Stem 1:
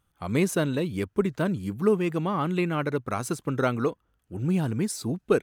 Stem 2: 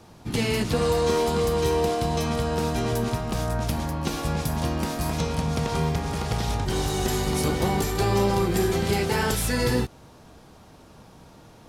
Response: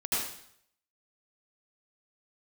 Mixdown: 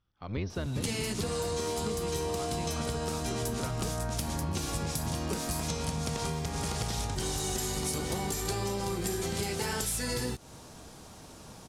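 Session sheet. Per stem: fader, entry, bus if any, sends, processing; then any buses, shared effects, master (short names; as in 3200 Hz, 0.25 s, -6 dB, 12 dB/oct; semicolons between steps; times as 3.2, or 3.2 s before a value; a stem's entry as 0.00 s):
-9.0 dB, 0.00 s, no send, octaver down 1 oct, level +4 dB; Chebyshev low-pass 5800 Hz, order 8
-0.5 dB, 0.50 s, no send, dry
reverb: off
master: bell 8100 Hz +10.5 dB 1.6 oct; compressor 10:1, threshold -29 dBFS, peak gain reduction 12 dB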